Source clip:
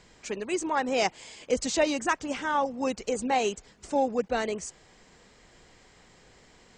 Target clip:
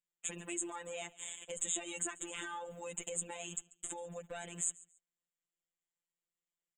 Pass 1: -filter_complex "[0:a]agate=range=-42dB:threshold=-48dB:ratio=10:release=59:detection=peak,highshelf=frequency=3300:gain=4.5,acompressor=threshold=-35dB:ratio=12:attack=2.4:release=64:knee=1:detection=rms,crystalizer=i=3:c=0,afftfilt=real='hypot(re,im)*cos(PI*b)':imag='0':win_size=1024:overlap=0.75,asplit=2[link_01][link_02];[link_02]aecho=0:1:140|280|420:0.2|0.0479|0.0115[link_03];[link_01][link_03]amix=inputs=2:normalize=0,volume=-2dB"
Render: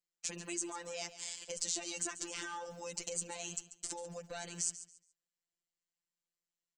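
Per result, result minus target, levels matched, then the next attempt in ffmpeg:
echo-to-direct +8 dB; 4,000 Hz band +4.0 dB
-filter_complex "[0:a]agate=range=-42dB:threshold=-48dB:ratio=10:release=59:detection=peak,highshelf=frequency=3300:gain=4.5,acompressor=threshold=-35dB:ratio=12:attack=2.4:release=64:knee=1:detection=rms,crystalizer=i=3:c=0,afftfilt=real='hypot(re,im)*cos(PI*b)':imag='0':win_size=1024:overlap=0.75,asplit=2[link_01][link_02];[link_02]aecho=0:1:140|280:0.0794|0.0191[link_03];[link_01][link_03]amix=inputs=2:normalize=0,volume=-2dB"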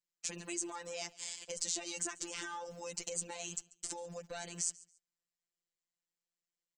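4,000 Hz band +4.0 dB
-filter_complex "[0:a]agate=range=-42dB:threshold=-48dB:ratio=10:release=59:detection=peak,asuperstop=centerf=5000:order=20:qfactor=1.8,highshelf=frequency=3300:gain=4.5,acompressor=threshold=-35dB:ratio=12:attack=2.4:release=64:knee=1:detection=rms,crystalizer=i=3:c=0,afftfilt=real='hypot(re,im)*cos(PI*b)':imag='0':win_size=1024:overlap=0.75,asplit=2[link_01][link_02];[link_02]aecho=0:1:140|280:0.0794|0.0191[link_03];[link_01][link_03]amix=inputs=2:normalize=0,volume=-2dB"

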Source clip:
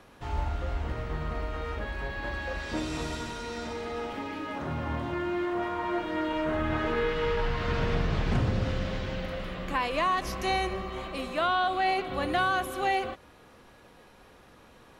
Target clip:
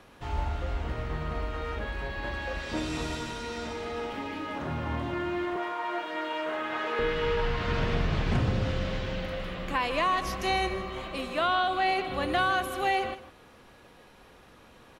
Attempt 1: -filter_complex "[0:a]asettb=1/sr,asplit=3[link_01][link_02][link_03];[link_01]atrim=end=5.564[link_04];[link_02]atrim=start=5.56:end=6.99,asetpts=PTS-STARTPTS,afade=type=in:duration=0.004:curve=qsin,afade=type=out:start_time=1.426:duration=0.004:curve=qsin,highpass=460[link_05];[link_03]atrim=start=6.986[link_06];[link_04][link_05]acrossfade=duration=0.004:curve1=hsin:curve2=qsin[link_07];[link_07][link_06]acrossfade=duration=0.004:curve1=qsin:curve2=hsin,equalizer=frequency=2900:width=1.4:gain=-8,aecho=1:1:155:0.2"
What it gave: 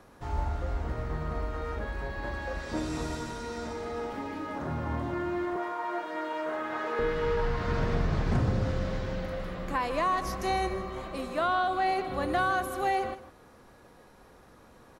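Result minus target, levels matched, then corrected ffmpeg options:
4,000 Hz band −6.5 dB
-filter_complex "[0:a]asettb=1/sr,asplit=3[link_01][link_02][link_03];[link_01]atrim=end=5.564[link_04];[link_02]atrim=start=5.56:end=6.99,asetpts=PTS-STARTPTS,afade=type=in:duration=0.004:curve=qsin,afade=type=out:start_time=1.426:duration=0.004:curve=qsin,highpass=460[link_05];[link_03]atrim=start=6.986[link_06];[link_04][link_05]acrossfade=duration=0.004:curve1=hsin:curve2=qsin[link_07];[link_07][link_06]acrossfade=duration=0.004:curve1=qsin:curve2=hsin,equalizer=frequency=2900:width=1.4:gain=2,aecho=1:1:155:0.2"

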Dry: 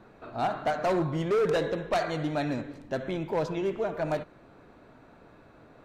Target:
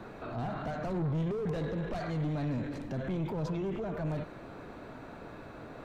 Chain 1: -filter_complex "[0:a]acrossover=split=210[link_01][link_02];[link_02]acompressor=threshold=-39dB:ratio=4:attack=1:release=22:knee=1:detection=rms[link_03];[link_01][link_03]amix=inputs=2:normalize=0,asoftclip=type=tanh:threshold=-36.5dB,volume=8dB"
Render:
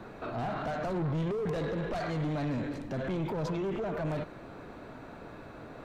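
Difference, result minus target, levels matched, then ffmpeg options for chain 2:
downward compressor: peak gain reduction −5 dB
-filter_complex "[0:a]acrossover=split=210[link_01][link_02];[link_02]acompressor=threshold=-45.5dB:ratio=4:attack=1:release=22:knee=1:detection=rms[link_03];[link_01][link_03]amix=inputs=2:normalize=0,asoftclip=type=tanh:threshold=-36.5dB,volume=8dB"

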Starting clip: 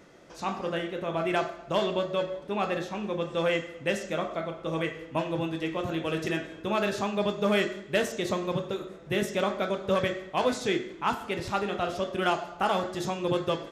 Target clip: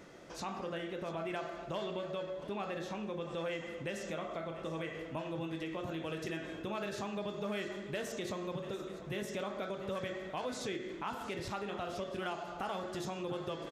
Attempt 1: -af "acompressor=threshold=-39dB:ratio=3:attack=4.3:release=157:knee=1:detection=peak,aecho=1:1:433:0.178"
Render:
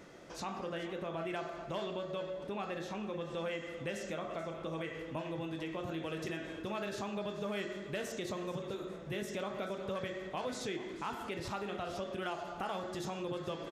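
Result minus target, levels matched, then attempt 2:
echo 258 ms early
-af "acompressor=threshold=-39dB:ratio=3:attack=4.3:release=157:knee=1:detection=peak,aecho=1:1:691:0.178"

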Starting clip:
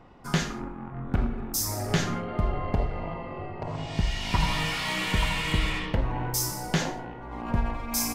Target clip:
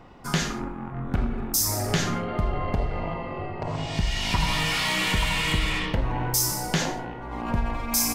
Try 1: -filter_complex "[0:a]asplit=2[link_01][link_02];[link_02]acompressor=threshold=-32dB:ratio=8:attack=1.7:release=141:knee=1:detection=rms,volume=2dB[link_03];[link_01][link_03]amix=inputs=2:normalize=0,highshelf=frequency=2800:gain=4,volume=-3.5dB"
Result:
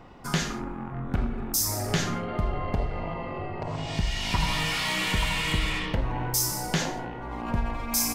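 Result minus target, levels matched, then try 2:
downward compressor: peak gain reduction +6 dB
-filter_complex "[0:a]asplit=2[link_01][link_02];[link_02]acompressor=threshold=-25dB:ratio=8:attack=1.7:release=141:knee=1:detection=rms,volume=2dB[link_03];[link_01][link_03]amix=inputs=2:normalize=0,highshelf=frequency=2800:gain=4,volume=-3.5dB"

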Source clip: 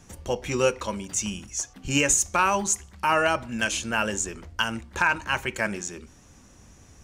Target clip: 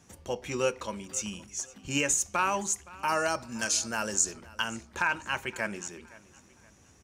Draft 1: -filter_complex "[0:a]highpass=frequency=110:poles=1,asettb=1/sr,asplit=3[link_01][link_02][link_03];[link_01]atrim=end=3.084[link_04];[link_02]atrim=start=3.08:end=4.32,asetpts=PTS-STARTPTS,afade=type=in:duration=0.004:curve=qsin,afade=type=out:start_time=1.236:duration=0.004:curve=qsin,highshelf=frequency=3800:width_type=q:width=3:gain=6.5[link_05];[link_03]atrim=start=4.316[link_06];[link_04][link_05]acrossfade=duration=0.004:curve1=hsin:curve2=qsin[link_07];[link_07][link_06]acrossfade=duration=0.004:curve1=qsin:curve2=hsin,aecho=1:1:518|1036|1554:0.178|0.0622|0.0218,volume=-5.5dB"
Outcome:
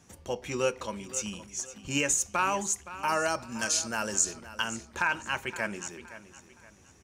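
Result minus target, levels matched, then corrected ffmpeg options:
echo-to-direct +6 dB
-filter_complex "[0:a]highpass=frequency=110:poles=1,asettb=1/sr,asplit=3[link_01][link_02][link_03];[link_01]atrim=end=3.084[link_04];[link_02]atrim=start=3.08:end=4.32,asetpts=PTS-STARTPTS,afade=type=in:duration=0.004:curve=qsin,afade=type=out:start_time=1.236:duration=0.004:curve=qsin,highshelf=frequency=3800:width_type=q:width=3:gain=6.5[link_05];[link_03]atrim=start=4.316[link_06];[link_04][link_05]acrossfade=duration=0.004:curve1=hsin:curve2=qsin[link_07];[link_07][link_06]acrossfade=duration=0.004:curve1=qsin:curve2=hsin,aecho=1:1:518|1036|1554:0.0891|0.0312|0.0109,volume=-5.5dB"

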